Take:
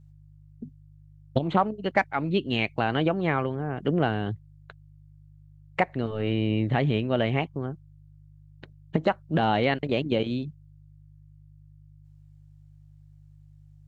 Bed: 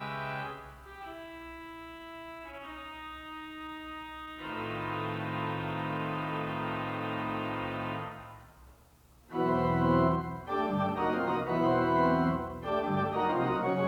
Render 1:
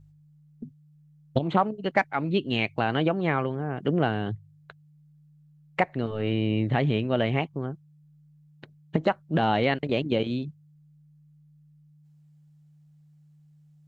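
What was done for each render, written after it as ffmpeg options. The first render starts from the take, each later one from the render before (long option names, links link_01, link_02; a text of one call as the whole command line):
ffmpeg -i in.wav -af "bandreject=frequency=50:width_type=h:width=4,bandreject=frequency=100:width_type=h:width=4" out.wav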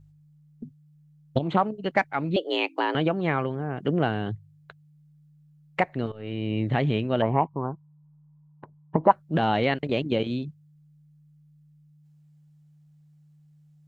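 ffmpeg -i in.wav -filter_complex "[0:a]asettb=1/sr,asplit=3[link_01][link_02][link_03];[link_01]atrim=end=2.364[link_04];[link_02]atrim=start=2.36:end=2.95,asetpts=PTS-STARTPTS,afade=type=in:duration=0.004:curve=qsin,afade=type=out:start_time=0.586:duration=0.004:curve=qsin,afreqshift=170[link_05];[link_03]atrim=start=2.946[link_06];[link_04][link_05]acrossfade=duration=0.004:curve1=hsin:curve2=qsin[link_07];[link_07][link_06]acrossfade=duration=0.004:curve1=qsin:curve2=hsin,asettb=1/sr,asplit=3[link_08][link_09][link_10];[link_08]atrim=end=7.224[link_11];[link_09]atrim=start=7.22:end=9.11,asetpts=PTS-STARTPTS,afade=type=in:duration=0.004:curve=qsin,afade=type=out:start_time=1.886:duration=0.004:curve=qsin,lowpass=frequency=980:width_type=q:width=7.4[link_12];[link_10]atrim=start=9.106[link_13];[link_11][link_12]acrossfade=duration=0.004:curve1=hsin:curve2=qsin[link_14];[link_14][link_13]acrossfade=duration=0.004:curve1=qsin:curve2=hsin,asplit=2[link_15][link_16];[link_15]atrim=end=6.12,asetpts=PTS-STARTPTS,afade=type=out:start_time=6.116:duration=0.004:curve=hsin:silence=0.188365[link_17];[link_16]atrim=start=6.12,asetpts=PTS-STARTPTS,afade=type=in:duration=0.56:silence=0.188365[link_18];[link_17][link_18]concat=n=2:v=0:a=1" out.wav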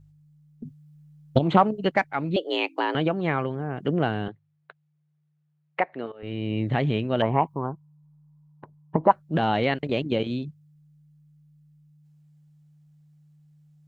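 ffmpeg -i in.wav -filter_complex "[0:a]asettb=1/sr,asplit=3[link_01][link_02][link_03];[link_01]atrim=end=0.654[link_04];[link_02]atrim=start=0.65:end=1.9,asetpts=PTS-STARTPTS,afade=type=in:duration=0.004:curve=qsin,afade=type=out:start_time=1.246:duration=0.004:curve=qsin,acontrast=27[link_05];[link_03]atrim=start=1.896[link_06];[link_04][link_05]acrossfade=duration=0.004:curve1=hsin:curve2=qsin[link_07];[link_07][link_06]acrossfade=duration=0.004:curve1=qsin:curve2=hsin,asettb=1/sr,asplit=3[link_08][link_09][link_10];[link_08]atrim=end=4.284[link_11];[link_09]atrim=start=4.28:end=6.23,asetpts=PTS-STARTPTS,afade=type=in:duration=0.004:curve=qsin,afade=type=out:start_time=1.946:duration=0.004:curve=qsin,highpass=330,lowpass=2800[link_12];[link_10]atrim=start=6.226[link_13];[link_11][link_12]acrossfade=duration=0.004:curve1=hsin:curve2=qsin[link_14];[link_14][link_13]acrossfade=duration=0.004:curve1=qsin:curve2=hsin,asettb=1/sr,asplit=3[link_15][link_16][link_17];[link_15]atrim=end=7.194[link_18];[link_16]atrim=start=7.19:end=7.7,asetpts=PTS-STARTPTS,afade=type=in:duration=0.004:curve=qsin,afade=type=out:start_time=0.506:duration=0.004:curve=qsin,highshelf=frequency=2400:gain=8.5[link_19];[link_17]atrim=start=7.696[link_20];[link_18][link_19]acrossfade=duration=0.004:curve1=hsin:curve2=qsin[link_21];[link_21][link_20]acrossfade=duration=0.004:curve1=qsin:curve2=hsin" out.wav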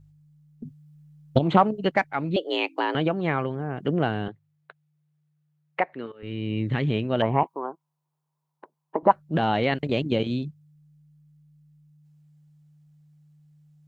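ffmpeg -i in.wav -filter_complex "[0:a]asettb=1/sr,asplit=3[link_01][link_02][link_03];[link_01]atrim=end=5.934[link_04];[link_02]atrim=start=5.93:end=6.88,asetpts=PTS-STARTPTS,afade=type=in:duration=0.004:curve=qsin,afade=type=out:start_time=0.946:duration=0.004:curve=qsin,equalizer=frequency=700:width_type=o:width=0.57:gain=-12.5[link_05];[link_03]atrim=start=6.876[link_06];[link_04][link_05]acrossfade=duration=0.004:curve1=hsin:curve2=qsin[link_07];[link_07][link_06]acrossfade=duration=0.004:curve1=qsin:curve2=hsin,asettb=1/sr,asplit=3[link_08][link_09][link_10];[link_08]atrim=end=7.434[link_11];[link_09]atrim=start=7.43:end=9.03,asetpts=PTS-STARTPTS,afade=type=in:duration=0.004:curve=qsin,afade=type=out:start_time=1.596:duration=0.004:curve=qsin,highpass=frequency=310:width=0.5412,highpass=frequency=310:width=1.3066[link_12];[link_10]atrim=start=9.026[link_13];[link_11][link_12]acrossfade=duration=0.004:curve1=hsin:curve2=qsin[link_14];[link_14][link_13]acrossfade=duration=0.004:curve1=qsin:curve2=hsin,asettb=1/sr,asplit=3[link_15][link_16][link_17];[link_15]atrim=end=9.724[link_18];[link_16]atrim=start=9.72:end=10.48,asetpts=PTS-STARTPTS,afade=type=in:duration=0.004:curve=qsin,afade=type=out:start_time=0.756:duration=0.004:curve=qsin,bass=frequency=250:gain=3,treble=frequency=4000:gain=4[link_19];[link_17]atrim=start=10.476[link_20];[link_18][link_19]acrossfade=duration=0.004:curve1=hsin:curve2=qsin[link_21];[link_21][link_20]acrossfade=duration=0.004:curve1=qsin:curve2=hsin" out.wav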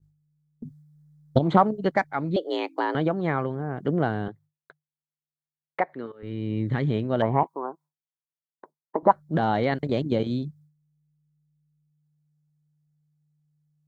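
ffmpeg -i in.wav -af "agate=range=-33dB:threshold=-48dB:ratio=3:detection=peak,equalizer=frequency=2700:width_type=o:width=0.38:gain=-14.5" out.wav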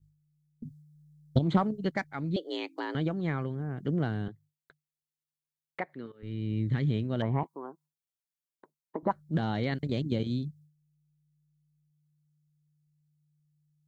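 ffmpeg -i in.wav -af "equalizer=frequency=780:width_type=o:width=2.6:gain=-12.5" out.wav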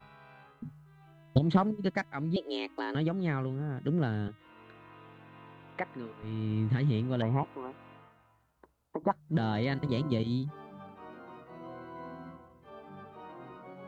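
ffmpeg -i in.wav -i bed.wav -filter_complex "[1:a]volume=-18.5dB[link_01];[0:a][link_01]amix=inputs=2:normalize=0" out.wav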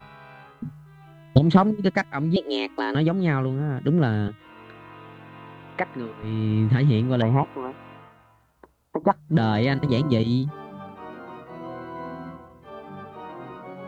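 ffmpeg -i in.wav -af "volume=9dB" out.wav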